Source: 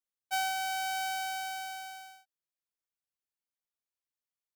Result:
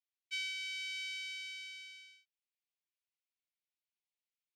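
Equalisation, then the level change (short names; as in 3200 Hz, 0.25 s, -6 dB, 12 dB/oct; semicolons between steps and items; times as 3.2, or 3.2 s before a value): steep high-pass 2100 Hz 48 dB/oct; tape spacing loss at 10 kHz 27 dB; +8.5 dB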